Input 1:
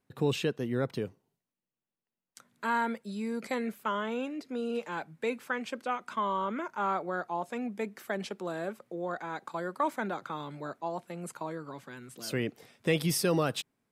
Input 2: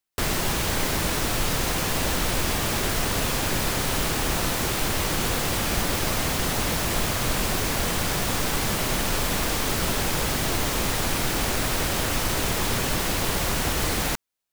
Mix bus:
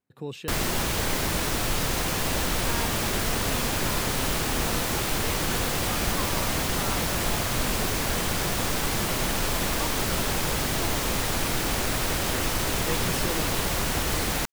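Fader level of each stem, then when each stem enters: −7.0, −1.5 decibels; 0.00, 0.30 seconds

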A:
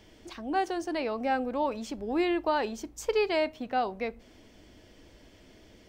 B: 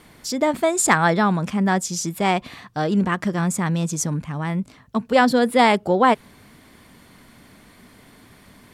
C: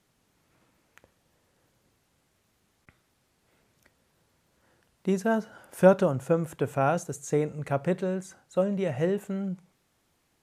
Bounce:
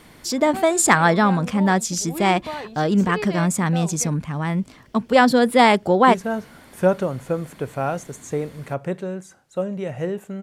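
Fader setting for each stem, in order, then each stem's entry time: −4.0, +1.5, +0.5 decibels; 0.00, 0.00, 1.00 seconds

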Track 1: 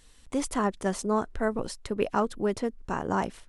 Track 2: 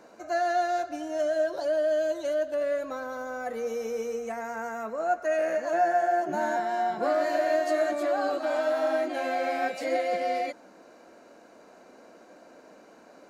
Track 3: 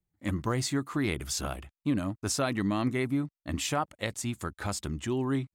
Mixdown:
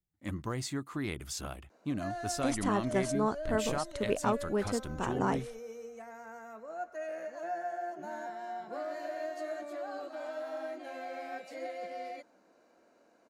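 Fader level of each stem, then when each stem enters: −4.0, −13.0, −6.5 decibels; 2.10, 1.70, 0.00 seconds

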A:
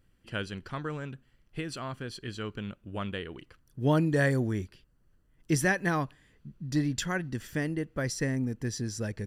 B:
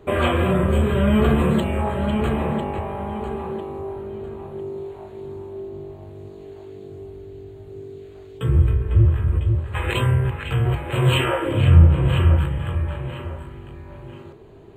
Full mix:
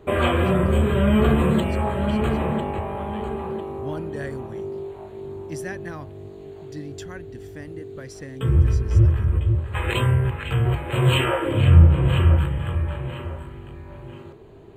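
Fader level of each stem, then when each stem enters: −8.5, −0.5 decibels; 0.00, 0.00 seconds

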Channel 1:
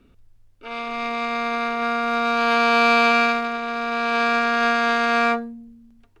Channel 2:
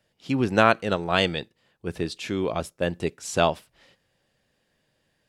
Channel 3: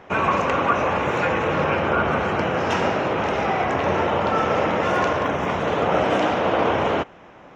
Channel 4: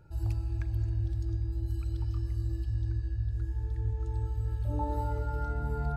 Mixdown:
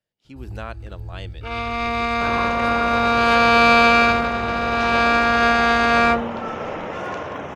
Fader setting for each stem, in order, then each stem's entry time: +3.0, −16.0, −8.0, −3.5 decibels; 0.80, 0.00, 2.10, 0.25 seconds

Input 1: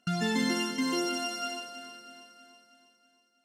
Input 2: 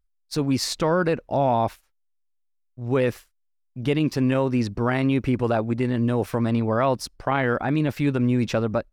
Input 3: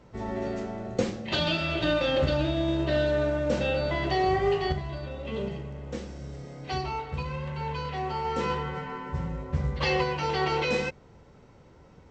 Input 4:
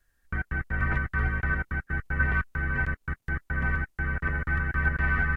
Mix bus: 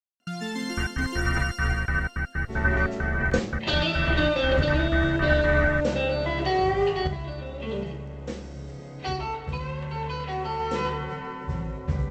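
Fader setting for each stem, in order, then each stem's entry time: −3.0 dB, muted, +1.5 dB, +1.5 dB; 0.20 s, muted, 2.35 s, 0.45 s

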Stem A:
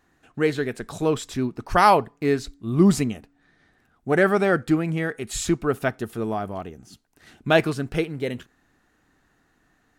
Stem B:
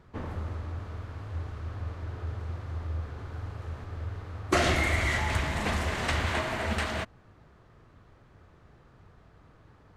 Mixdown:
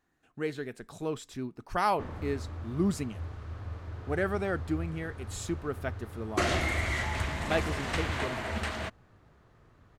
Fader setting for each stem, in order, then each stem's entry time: −11.5, −3.5 decibels; 0.00, 1.85 seconds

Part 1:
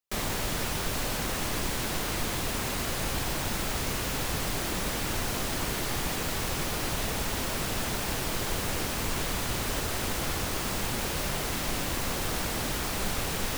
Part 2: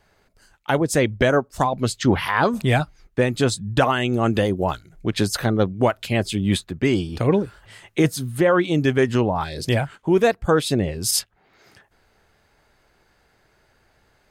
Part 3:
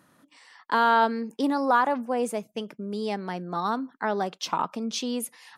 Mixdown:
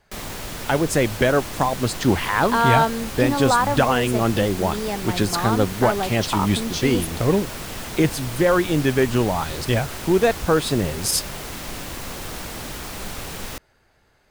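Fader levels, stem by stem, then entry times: −1.5, −0.5, +2.5 decibels; 0.00, 0.00, 1.80 seconds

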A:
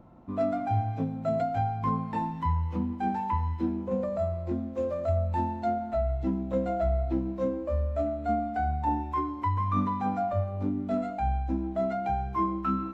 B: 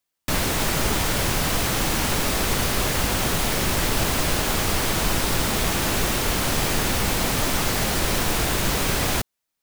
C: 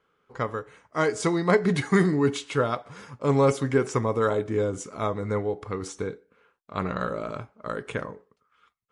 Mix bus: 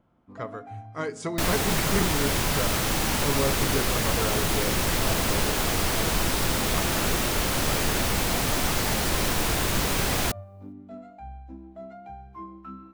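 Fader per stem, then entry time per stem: −13.0, −2.5, −7.5 decibels; 0.00, 1.10, 0.00 seconds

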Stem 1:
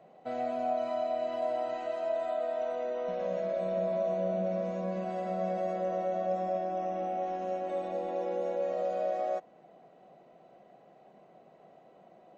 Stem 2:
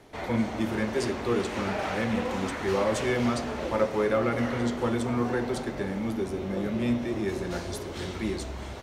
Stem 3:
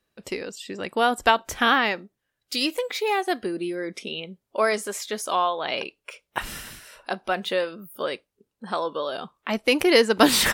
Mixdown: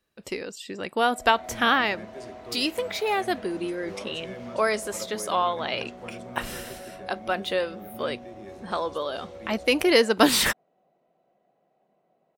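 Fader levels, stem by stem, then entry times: −12.0, −14.5, −1.5 decibels; 0.75, 1.20, 0.00 seconds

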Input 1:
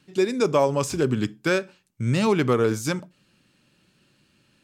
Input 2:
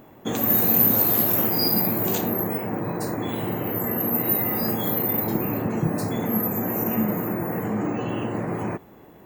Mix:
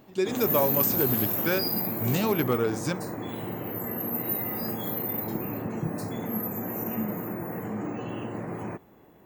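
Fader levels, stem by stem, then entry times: −5.0, −7.0 decibels; 0.00, 0.00 seconds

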